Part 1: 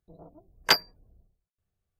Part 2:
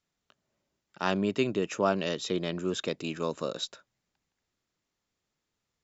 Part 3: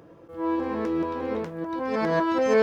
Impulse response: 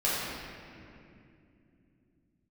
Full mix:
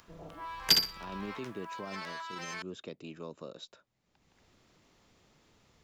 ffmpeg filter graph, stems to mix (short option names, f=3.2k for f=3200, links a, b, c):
-filter_complex "[0:a]volume=0dB,asplit=2[a][b];[b]volume=-5dB[c];[1:a]lowpass=f=3.1k:p=1,acompressor=mode=upward:threshold=-30dB:ratio=2.5,volume=-10.5dB[d];[2:a]highpass=f=1.1k:w=0.5412,highpass=f=1.1k:w=1.3066,volume=2dB[e];[d][e]amix=inputs=2:normalize=0,equalizer=f=1.6k:w=1.9:g=-3.5,alimiter=level_in=4dB:limit=-24dB:level=0:latency=1:release=20,volume=-4dB,volume=0dB[f];[c]aecho=0:1:61|122|183|244:1|0.23|0.0529|0.0122[g];[a][f][g]amix=inputs=3:normalize=0,acrossover=split=310|3000[h][i][j];[i]acompressor=threshold=-40dB:ratio=6[k];[h][k][j]amix=inputs=3:normalize=0"